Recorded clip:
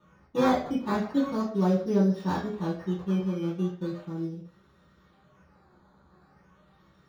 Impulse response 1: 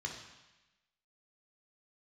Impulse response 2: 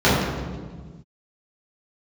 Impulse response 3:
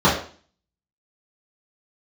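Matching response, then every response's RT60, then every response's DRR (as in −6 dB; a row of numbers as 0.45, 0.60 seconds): 3; 1.0, 1.5, 0.45 seconds; 0.0, −11.5, −10.0 decibels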